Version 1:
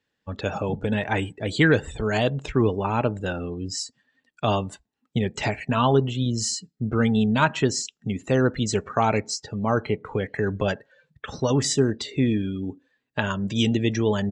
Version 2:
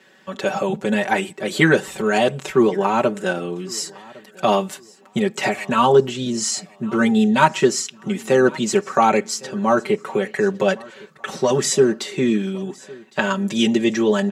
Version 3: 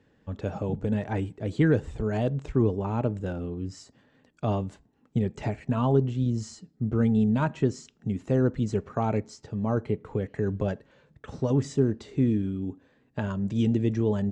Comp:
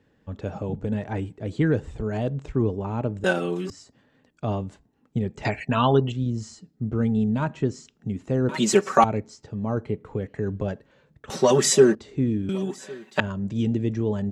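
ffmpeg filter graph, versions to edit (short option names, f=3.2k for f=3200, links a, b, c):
-filter_complex "[1:a]asplit=4[a][b][c][d];[2:a]asplit=6[e][f][g][h][i][j];[e]atrim=end=3.242[k];[a]atrim=start=3.238:end=3.702[l];[f]atrim=start=3.698:end=5.452[m];[0:a]atrim=start=5.448:end=6.122[n];[g]atrim=start=6.118:end=8.492[o];[b]atrim=start=8.488:end=9.042[p];[h]atrim=start=9.038:end=11.302[q];[c]atrim=start=11.298:end=11.952[r];[i]atrim=start=11.948:end=12.492[s];[d]atrim=start=12.488:end=13.202[t];[j]atrim=start=13.198[u];[k][l]acrossfade=d=0.004:c1=hsin:c2=hsin[v];[v][m]acrossfade=d=0.004:c1=hsin:c2=hsin[w];[w][n]acrossfade=d=0.004:c1=hsin:c2=hsin[x];[x][o]acrossfade=d=0.004:c1=hsin:c2=hsin[y];[y][p]acrossfade=d=0.004:c1=hsin:c2=hsin[z];[z][q]acrossfade=d=0.004:c1=hsin:c2=hsin[aa];[aa][r]acrossfade=d=0.004:c1=hsin:c2=hsin[ab];[ab][s]acrossfade=d=0.004:c1=hsin:c2=hsin[ac];[ac][t]acrossfade=d=0.004:c1=hsin:c2=hsin[ad];[ad][u]acrossfade=d=0.004:c1=hsin:c2=hsin"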